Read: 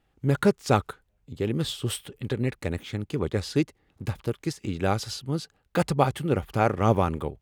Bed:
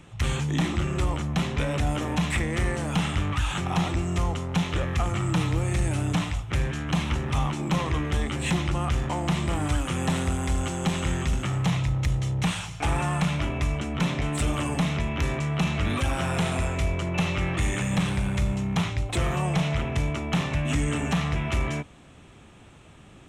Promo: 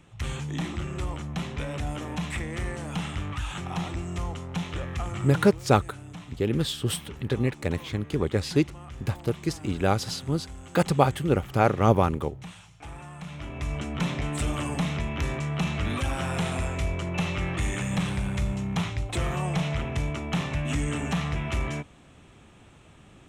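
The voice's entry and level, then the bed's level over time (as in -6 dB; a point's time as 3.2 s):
5.00 s, +1.5 dB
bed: 5.27 s -6 dB
5.61 s -16.5 dB
13.17 s -16.5 dB
13.78 s -2.5 dB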